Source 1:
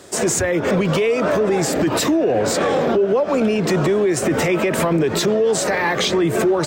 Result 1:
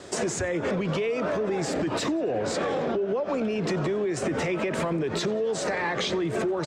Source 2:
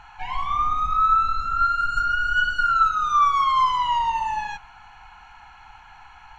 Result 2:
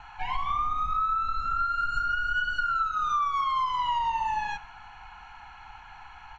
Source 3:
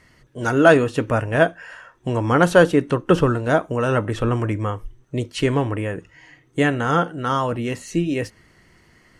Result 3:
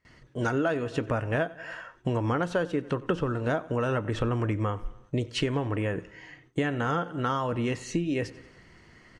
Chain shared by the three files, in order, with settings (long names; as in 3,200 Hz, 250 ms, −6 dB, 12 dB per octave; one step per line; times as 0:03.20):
repeating echo 91 ms, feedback 54%, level −22.5 dB
downward compressor 8 to 1, threshold −24 dBFS
high-shelf EQ 5,200 Hz +4.5 dB
noise gate with hold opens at −44 dBFS
high-frequency loss of the air 87 metres